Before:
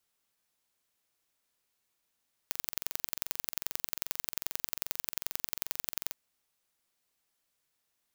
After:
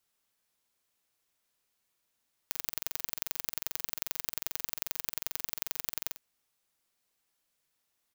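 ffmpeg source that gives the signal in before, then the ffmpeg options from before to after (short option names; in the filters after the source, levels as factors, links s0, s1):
-f lavfi -i "aevalsrc='0.668*eq(mod(n,1960),0)*(0.5+0.5*eq(mod(n,3920),0))':d=3.63:s=44100"
-filter_complex "[0:a]asplit=2[s0][s1];[s1]adelay=50,volume=0.355[s2];[s0][s2]amix=inputs=2:normalize=0"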